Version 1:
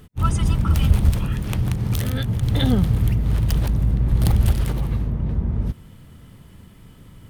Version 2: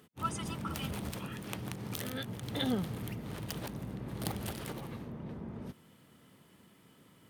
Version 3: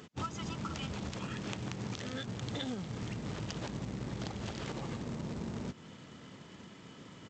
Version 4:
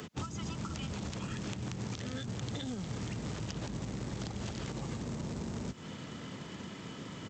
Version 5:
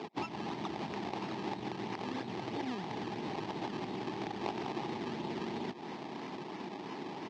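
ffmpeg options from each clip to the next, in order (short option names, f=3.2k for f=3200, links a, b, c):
-af "highpass=240,volume=-8.5dB"
-af "acompressor=threshold=-45dB:ratio=12,aresample=16000,acrusher=bits=3:mode=log:mix=0:aa=0.000001,aresample=44100,volume=9.5dB"
-filter_complex "[0:a]acrossover=split=94|290|5900[a][b][c][d];[a]acompressor=threshold=-53dB:ratio=4[e];[b]acompressor=threshold=-49dB:ratio=4[f];[c]acompressor=threshold=-53dB:ratio=4[g];[d]acompressor=threshold=-59dB:ratio=4[h];[e][f][g][h]amix=inputs=4:normalize=0,volume=8dB"
-af "acrusher=samples=21:mix=1:aa=0.000001:lfo=1:lforange=21:lforate=3,aeval=exprs='(mod(21.1*val(0)+1,2)-1)/21.1':c=same,highpass=280,equalizer=f=360:t=q:w=4:g=7,equalizer=f=530:t=q:w=4:g=-8,equalizer=f=840:t=q:w=4:g=9,equalizer=f=1.4k:t=q:w=4:g=-9,lowpass=f=5k:w=0.5412,lowpass=f=5k:w=1.3066,volume=4dB"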